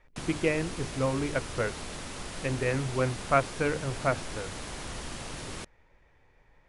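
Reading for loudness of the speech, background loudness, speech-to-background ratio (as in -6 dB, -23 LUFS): -30.5 LUFS, -39.0 LUFS, 8.5 dB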